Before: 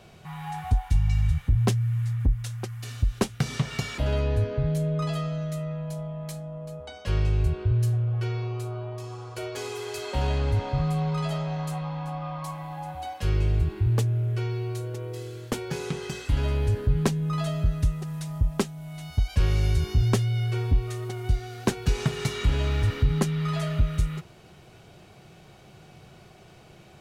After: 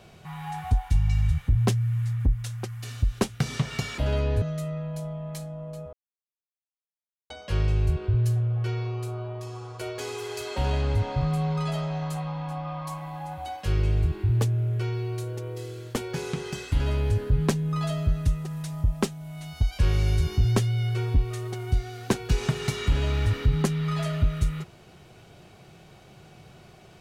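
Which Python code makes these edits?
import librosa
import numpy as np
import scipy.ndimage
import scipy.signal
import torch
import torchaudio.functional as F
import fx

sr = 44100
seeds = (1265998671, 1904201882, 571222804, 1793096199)

y = fx.edit(x, sr, fx.cut(start_s=4.42, length_s=0.94),
    fx.insert_silence(at_s=6.87, length_s=1.37), tone=tone)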